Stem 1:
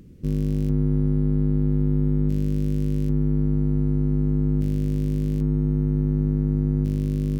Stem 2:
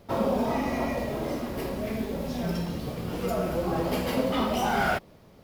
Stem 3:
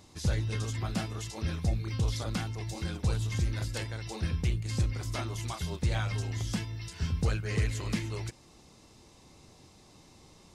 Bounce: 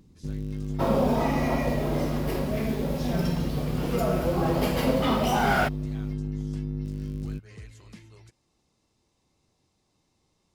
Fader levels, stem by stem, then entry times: -9.5 dB, +2.0 dB, -15.5 dB; 0.00 s, 0.70 s, 0.00 s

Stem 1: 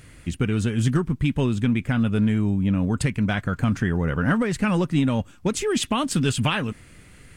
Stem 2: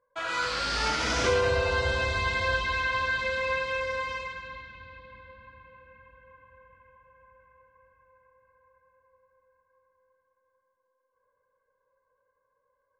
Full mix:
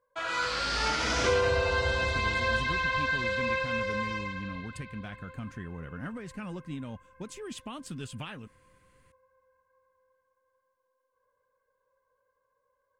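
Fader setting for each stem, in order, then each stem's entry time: -17.5 dB, -1.0 dB; 1.75 s, 0.00 s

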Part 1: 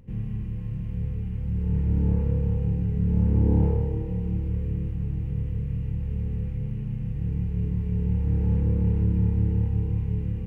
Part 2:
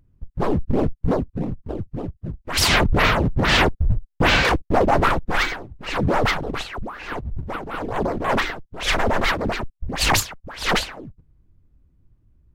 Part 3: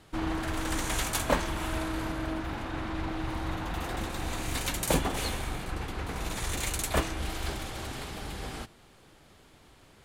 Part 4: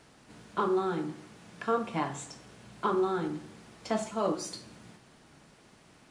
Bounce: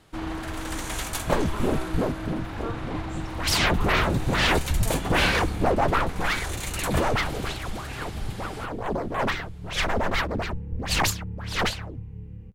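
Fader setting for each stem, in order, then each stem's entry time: -12.5 dB, -5.0 dB, -0.5 dB, -8.0 dB; 2.05 s, 0.90 s, 0.00 s, 0.95 s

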